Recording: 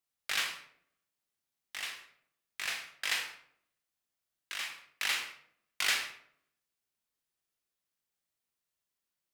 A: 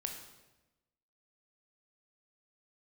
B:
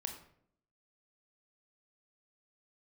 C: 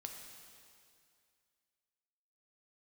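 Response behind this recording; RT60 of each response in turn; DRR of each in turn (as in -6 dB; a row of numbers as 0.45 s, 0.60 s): B; 1.0 s, 0.65 s, 2.3 s; 3.0 dB, 4.0 dB, 2.0 dB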